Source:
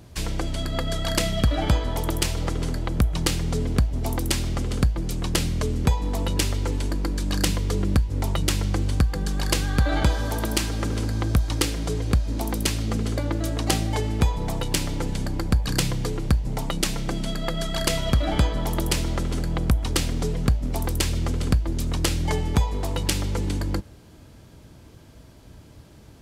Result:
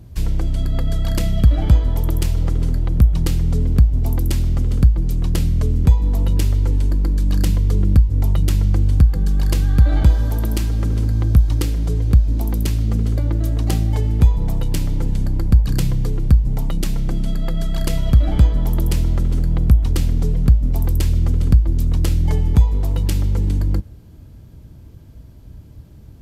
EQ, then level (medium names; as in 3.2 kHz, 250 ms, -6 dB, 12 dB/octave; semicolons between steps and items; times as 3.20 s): bass shelf 160 Hz +9 dB; bass shelf 370 Hz +8.5 dB; peaking EQ 13 kHz +10 dB 0.27 oct; -6.5 dB